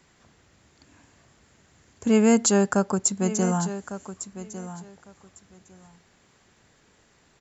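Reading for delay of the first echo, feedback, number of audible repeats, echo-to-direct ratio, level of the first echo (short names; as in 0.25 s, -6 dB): 1.153 s, 17%, 2, -13.0 dB, -13.0 dB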